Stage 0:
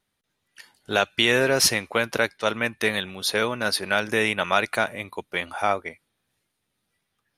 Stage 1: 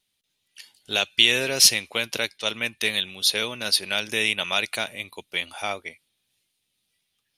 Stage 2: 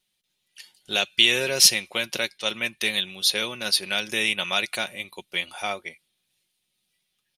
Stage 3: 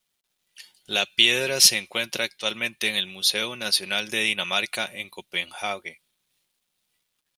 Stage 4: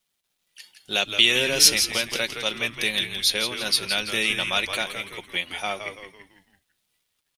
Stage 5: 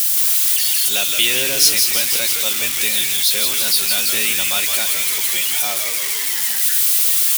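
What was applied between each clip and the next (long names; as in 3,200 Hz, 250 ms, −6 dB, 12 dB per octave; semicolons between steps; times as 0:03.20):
high shelf with overshoot 2,100 Hz +10 dB, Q 1.5; level −6.5 dB
comb filter 5.5 ms, depth 41%; level −1 dB
bit reduction 12 bits
echo with shifted repeats 167 ms, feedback 42%, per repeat −99 Hz, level −8 dB
spike at every zero crossing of −9 dBFS; level −1 dB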